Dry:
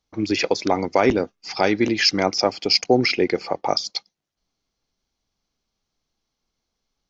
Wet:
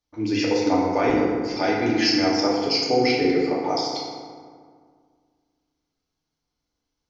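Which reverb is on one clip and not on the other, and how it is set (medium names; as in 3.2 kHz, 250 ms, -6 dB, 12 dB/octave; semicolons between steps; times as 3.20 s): FDN reverb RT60 1.9 s, low-frequency decay 1.25×, high-frequency decay 0.5×, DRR -5.5 dB; trim -8.5 dB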